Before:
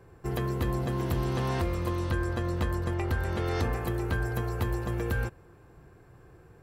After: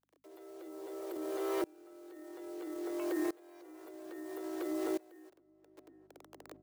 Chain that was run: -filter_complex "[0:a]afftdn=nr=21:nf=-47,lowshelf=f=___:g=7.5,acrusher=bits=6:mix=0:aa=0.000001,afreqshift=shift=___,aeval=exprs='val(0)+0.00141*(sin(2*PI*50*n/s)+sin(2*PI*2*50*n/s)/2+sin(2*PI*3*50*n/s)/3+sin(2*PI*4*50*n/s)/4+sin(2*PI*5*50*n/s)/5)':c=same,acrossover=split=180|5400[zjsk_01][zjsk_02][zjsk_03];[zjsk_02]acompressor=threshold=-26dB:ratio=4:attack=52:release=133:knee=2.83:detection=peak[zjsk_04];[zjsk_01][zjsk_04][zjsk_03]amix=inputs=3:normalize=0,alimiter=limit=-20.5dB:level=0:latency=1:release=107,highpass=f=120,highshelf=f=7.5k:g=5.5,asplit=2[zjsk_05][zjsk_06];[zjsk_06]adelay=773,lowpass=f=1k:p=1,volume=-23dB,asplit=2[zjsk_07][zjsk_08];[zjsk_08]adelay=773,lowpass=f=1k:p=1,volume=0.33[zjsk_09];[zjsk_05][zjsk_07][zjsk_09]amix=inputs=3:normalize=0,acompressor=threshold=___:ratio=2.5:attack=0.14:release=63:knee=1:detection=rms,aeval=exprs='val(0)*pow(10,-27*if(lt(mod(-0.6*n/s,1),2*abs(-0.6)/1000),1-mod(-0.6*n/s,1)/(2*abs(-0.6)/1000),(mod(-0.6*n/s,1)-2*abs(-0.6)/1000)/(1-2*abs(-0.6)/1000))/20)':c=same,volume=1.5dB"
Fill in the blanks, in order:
220, 260, -31dB